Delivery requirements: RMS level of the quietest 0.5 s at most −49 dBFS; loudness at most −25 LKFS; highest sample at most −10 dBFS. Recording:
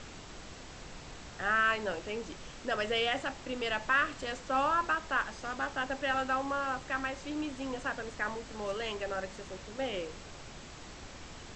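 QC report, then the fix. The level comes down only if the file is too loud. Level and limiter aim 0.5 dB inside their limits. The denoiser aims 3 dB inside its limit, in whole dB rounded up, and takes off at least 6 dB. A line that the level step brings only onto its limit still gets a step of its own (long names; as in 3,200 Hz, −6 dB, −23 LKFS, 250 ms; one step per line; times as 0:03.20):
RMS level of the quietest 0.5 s −48 dBFS: out of spec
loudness −33.0 LKFS: in spec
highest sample −17.0 dBFS: in spec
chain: broadband denoise 6 dB, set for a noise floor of −48 dBFS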